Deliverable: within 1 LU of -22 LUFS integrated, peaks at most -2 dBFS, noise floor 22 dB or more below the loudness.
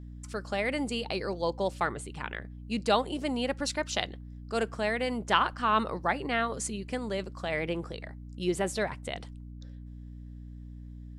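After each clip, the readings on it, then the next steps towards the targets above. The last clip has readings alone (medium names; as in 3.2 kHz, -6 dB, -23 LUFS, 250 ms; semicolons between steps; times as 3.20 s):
hum 60 Hz; highest harmonic 300 Hz; hum level -41 dBFS; loudness -31.5 LUFS; peak level -9.0 dBFS; loudness target -22.0 LUFS
-> de-hum 60 Hz, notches 5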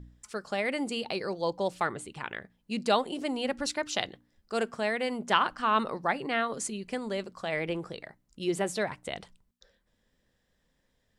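hum not found; loudness -31.5 LUFS; peak level -9.0 dBFS; loudness target -22.0 LUFS
-> trim +9.5 dB; peak limiter -2 dBFS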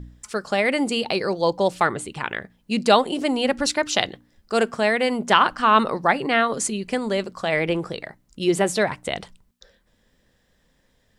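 loudness -22.0 LUFS; peak level -2.0 dBFS; noise floor -65 dBFS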